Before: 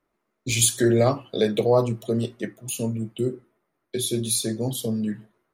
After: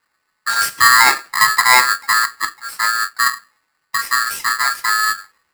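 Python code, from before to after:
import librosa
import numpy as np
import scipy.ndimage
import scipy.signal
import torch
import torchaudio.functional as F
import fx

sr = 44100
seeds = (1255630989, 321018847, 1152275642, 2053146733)

y = fx.tilt_shelf(x, sr, db=7.0, hz=1300.0)
y = y * np.sign(np.sin(2.0 * np.pi * 1500.0 * np.arange(len(y)) / sr))
y = F.gain(torch.from_numpy(y), 2.5).numpy()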